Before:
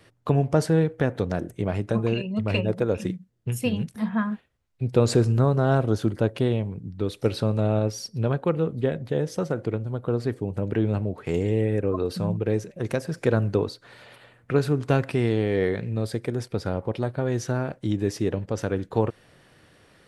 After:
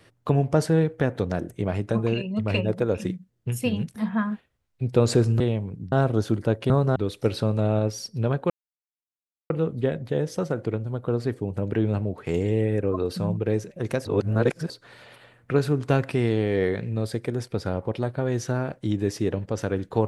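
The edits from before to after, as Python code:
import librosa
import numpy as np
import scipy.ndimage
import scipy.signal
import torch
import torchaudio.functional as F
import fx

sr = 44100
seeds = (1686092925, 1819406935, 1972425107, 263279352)

y = fx.edit(x, sr, fx.swap(start_s=5.4, length_s=0.26, other_s=6.44, other_length_s=0.52),
    fx.insert_silence(at_s=8.5, length_s=1.0),
    fx.reverse_span(start_s=13.05, length_s=0.65), tone=tone)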